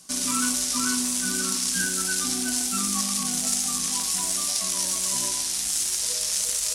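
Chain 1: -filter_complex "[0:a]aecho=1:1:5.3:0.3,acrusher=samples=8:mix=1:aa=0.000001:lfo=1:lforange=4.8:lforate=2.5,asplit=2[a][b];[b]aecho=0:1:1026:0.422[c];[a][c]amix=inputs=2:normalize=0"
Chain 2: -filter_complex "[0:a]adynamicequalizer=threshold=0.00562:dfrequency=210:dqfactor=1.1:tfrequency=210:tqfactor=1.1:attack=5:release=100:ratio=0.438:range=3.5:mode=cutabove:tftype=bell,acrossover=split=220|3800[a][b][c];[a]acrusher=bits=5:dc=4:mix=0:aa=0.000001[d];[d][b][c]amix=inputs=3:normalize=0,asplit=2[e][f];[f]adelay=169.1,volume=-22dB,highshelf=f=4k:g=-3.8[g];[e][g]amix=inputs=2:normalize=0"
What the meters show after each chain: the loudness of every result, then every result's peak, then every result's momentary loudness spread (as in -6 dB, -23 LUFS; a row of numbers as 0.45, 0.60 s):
-24.0, -23.5 LUFS; -8.5, -8.0 dBFS; 1, 1 LU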